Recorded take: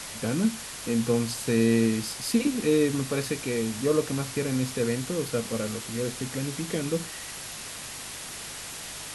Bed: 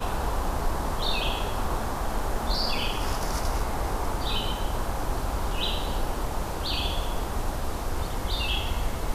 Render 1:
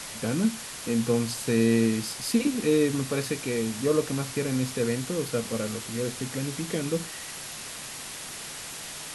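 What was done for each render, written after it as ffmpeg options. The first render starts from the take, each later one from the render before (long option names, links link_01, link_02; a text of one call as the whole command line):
ffmpeg -i in.wav -af "bandreject=frequency=50:width_type=h:width=4,bandreject=frequency=100:width_type=h:width=4" out.wav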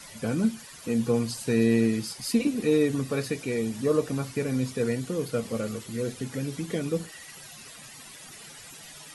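ffmpeg -i in.wav -af "afftdn=noise_reduction=13:noise_floor=-39" out.wav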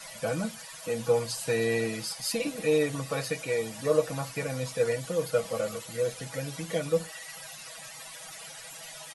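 ffmpeg -i in.wav -af "lowshelf=frequency=460:width_type=q:width=3:gain=-6.5,aecho=1:1:6.2:0.65" out.wav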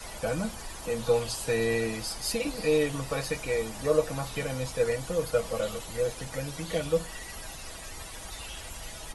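ffmpeg -i in.wav -i bed.wav -filter_complex "[1:a]volume=-16dB[link_01];[0:a][link_01]amix=inputs=2:normalize=0" out.wav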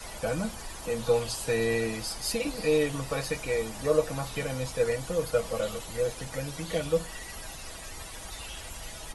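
ffmpeg -i in.wav -af anull out.wav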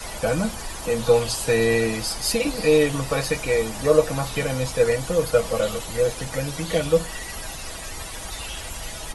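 ffmpeg -i in.wav -af "volume=7.5dB" out.wav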